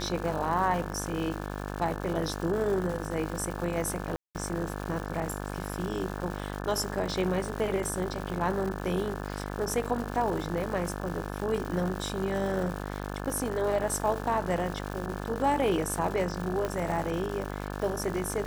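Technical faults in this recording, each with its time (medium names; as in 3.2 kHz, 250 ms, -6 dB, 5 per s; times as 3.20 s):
buzz 50 Hz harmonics 35 -36 dBFS
crackle 330 per s -35 dBFS
4.16–4.35 s: dropout 188 ms
16.65 s: pop -18 dBFS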